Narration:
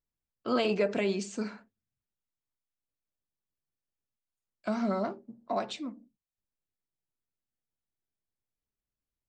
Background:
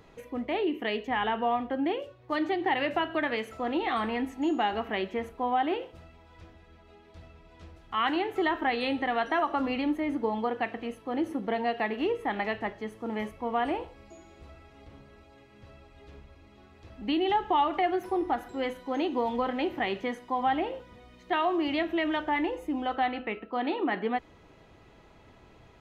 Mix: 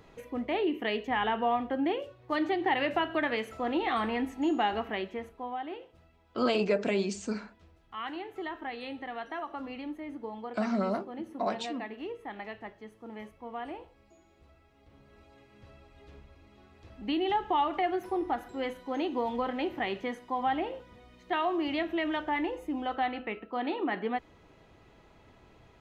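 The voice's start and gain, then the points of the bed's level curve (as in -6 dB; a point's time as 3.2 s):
5.90 s, +0.5 dB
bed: 4.74 s -0.5 dB
5.61 s -10.5 dB
14.81 s -10.5 dB
15.22 s -2.5 dB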